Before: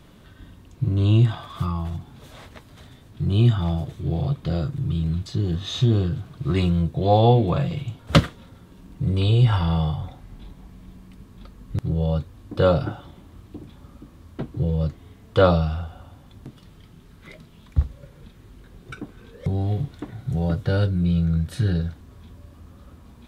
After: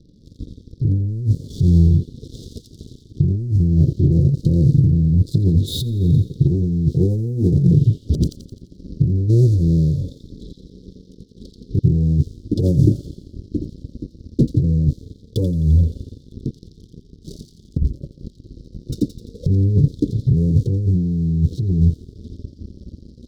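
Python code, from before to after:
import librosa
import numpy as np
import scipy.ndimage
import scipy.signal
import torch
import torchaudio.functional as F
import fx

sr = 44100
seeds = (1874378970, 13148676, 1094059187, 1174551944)

y = scipy.signal.sosfilt(scipy.signal.ellip(4, 1.0, 40, 5500.0, 'lowpass', fs=sr, output='sos'), x)
y = fx.high_shelf(y, sr, hz=3600.0, db=-7.5)
y = fx.env_lowpass_down(y, sr, base_hz=400.0, full_db=-19.0)
y = fx.leveller(y, sr, passes=3)
y = scipy.signal.sosfilt(scipy.signal.cheby2(4, 40, [740.0, 2600.0], 'bandstop', fs=sr, output='sos'), y)
y = fx.low_shelf(y, sr, hz=230.0, db=-11.5, at=(9.28, 11.78), fade=0.02)
y = fx.echo_wet_highpass(y, sr, ms=86, feedback_pct=51, hz=2100.0, wet_db=-3)
y = fx.over_compress(y, sr, threshold_db=-16.0, ratio=-0.5)
y = fx.notch_cascade(y, sr, direction='falling', hz=0.21)
y = F.gain(torch.from_numpy(y), 2.5).numpy()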